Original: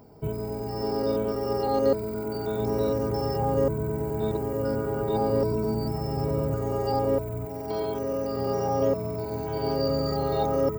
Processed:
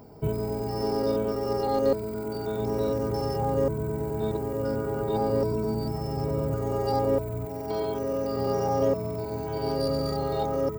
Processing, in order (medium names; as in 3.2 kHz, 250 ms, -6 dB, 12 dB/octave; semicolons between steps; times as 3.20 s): tracing distortion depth 0.029 ms; gain riding within 5 dB 2 s; trim -1 dB